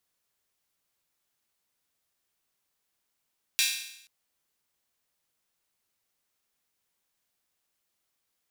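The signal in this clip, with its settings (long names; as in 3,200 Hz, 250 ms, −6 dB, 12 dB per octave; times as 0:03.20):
open synth hi-hat length 0.48 s, high-pass 2,700 Hz, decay 0.77 s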